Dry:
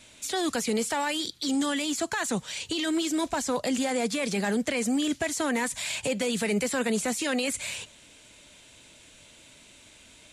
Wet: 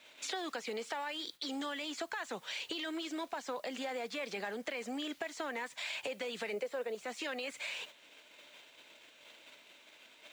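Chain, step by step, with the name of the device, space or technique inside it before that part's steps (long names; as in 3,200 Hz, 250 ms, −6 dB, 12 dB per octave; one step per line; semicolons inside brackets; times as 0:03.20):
0:06.53–0:06.95: parametric band 500 Hz +12 dB 0.89 octaves
baby monitor (band-pass filter 450–3,700 Hz; downward compressor 6 to 1, threshold −44 dBFS, peak gain reduction 24 dB; white noise bed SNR 26 dB; noise gate −55 dBFS, range −10 dB)
level +6 dB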